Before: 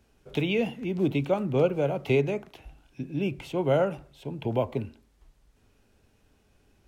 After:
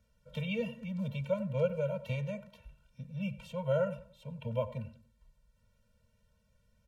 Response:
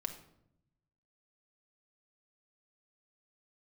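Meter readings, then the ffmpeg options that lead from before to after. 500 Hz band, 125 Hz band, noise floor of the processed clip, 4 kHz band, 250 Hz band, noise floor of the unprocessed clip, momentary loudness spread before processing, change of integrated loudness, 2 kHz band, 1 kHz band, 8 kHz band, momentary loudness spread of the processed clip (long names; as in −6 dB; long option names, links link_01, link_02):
−8.0 dB, −5.5 dB, −73 dBFS, −9.0 dB, −9.5 dB, −65 dBFS, 11 LU, −8.0 dB, −9.0 dB, −11.5 dB, can't be measured, 13 LU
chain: -filter_complex "[0:a]asplit=2[link_01][link_02];[link_02]adelay=94,lowpass=frequency=2000:poles=1,volume=-15.5dB,asplit=2[link_03][link_04];[link_04]adelay=94,lowpass=frequency=2000:poles=1,volume=0.34,asplit=2[link_05][link_06];[link_06]adelay=94,lowpass=frequency=2000:poles=1,volume=0.34[link_07];[link_01][link_03][link_05][link_07]amix=inputs=4:normalize=0,afftfilt=real='re*eq(mod(floor(b*sr/1024/220),2),0)':imag='im*eq(mod(floor(b*sr/1024/220),2),0)':win_size=1024:overlap=0.75,volume=-5.5dB"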